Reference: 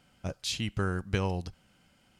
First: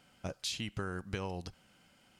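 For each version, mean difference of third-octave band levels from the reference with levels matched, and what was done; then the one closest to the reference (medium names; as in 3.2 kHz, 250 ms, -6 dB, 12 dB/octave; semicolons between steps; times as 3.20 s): 4.0 dB: bass shelf 150 Hz -8 dB; compression 6:1, threshold -35 dBFS, peak gain reduction 8.5 dB; trim +1 dB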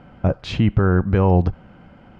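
6.5 dB: low-pass 1.2 kHz 12 dB/octave; loudness maximiser +27 dB; trim -6 dB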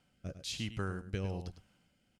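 2.5 dB: delay 103 ms -11.5 dB; rotary cabinet horn 1.1 Hz; trim -5 dB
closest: third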